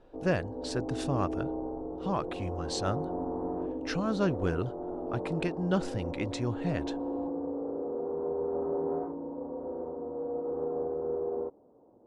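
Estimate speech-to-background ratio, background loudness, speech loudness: 2.0 dB, -36.0 LUFS, -34.0 LUFS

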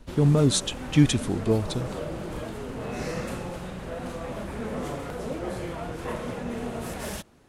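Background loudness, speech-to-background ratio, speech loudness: -34.5 LUFS, 11.0 dB, -23.5 LUFS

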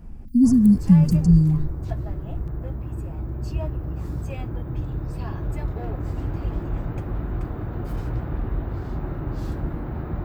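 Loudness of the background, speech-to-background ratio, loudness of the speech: -30.5 LUFS, 13.0 dB, -17.5 LUFS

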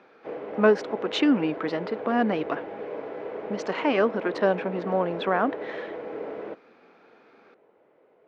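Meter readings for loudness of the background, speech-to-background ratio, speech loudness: -36.0 LUFS, 10.0 dB, -26.0 LUFS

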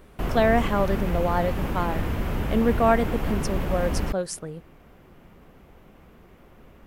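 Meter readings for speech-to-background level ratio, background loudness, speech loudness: 4.0 dB, -29.5 LUFS, -25.5 LUFS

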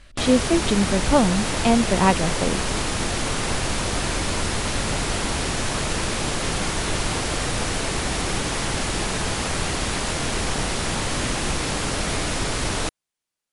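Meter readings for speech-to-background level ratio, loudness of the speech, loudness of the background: 3.0 dB, -21.5 LUFS, -24.5 LUFS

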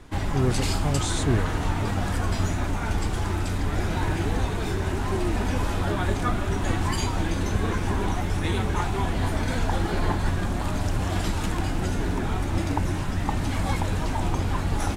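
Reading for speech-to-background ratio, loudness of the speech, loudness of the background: -2.0 dB, -29.0 LUFS, -27.0 LUFS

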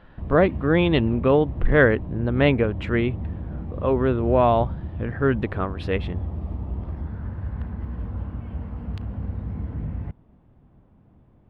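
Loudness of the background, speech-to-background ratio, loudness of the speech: -32.5 LUFS, 10.5 dB, -22.0 LUFS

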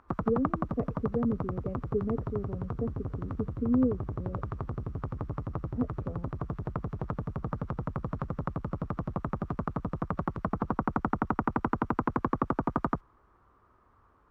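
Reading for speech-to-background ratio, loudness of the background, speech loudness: 1.0 dB, -34.5 LUFS, -33.5 LUFS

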